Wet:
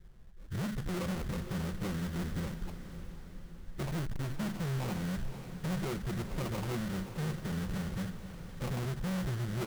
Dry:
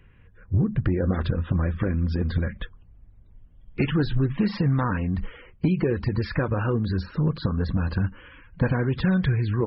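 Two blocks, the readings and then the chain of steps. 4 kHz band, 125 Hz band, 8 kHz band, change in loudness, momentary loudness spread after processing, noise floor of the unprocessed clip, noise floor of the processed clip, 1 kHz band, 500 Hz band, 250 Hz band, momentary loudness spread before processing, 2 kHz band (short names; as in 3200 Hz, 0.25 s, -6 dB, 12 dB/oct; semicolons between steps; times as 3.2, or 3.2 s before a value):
-5.5 dB, -12.0 dB, n/a, -12.0 dB, 11 LU, -53 dBFS, -49 dBFS, -8.5 dB, -12.0 dB, -11.0 dB, 6 LU, -10.5 dB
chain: low shelf 140 Hz +7.5 dB; comb 5.5 ms, depth 74%; dispersion highs, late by 98 ms, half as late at 2300 Hz; sample-rate reducer 1700 Hz, jitter 20%; soft clip -24 dBFS, distortion -6 dB; on a send: diffused feedback echo 0.515 s, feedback 54%, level -11 dB; on the sum: gain -8.5 dB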